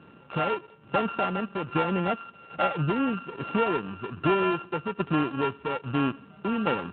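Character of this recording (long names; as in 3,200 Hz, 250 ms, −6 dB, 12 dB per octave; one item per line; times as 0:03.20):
a buzz of ramps at a fixed pitch in blocks of 32 samples
tremolo saw down 1.2 Hz, depth 60%
AMR narrowband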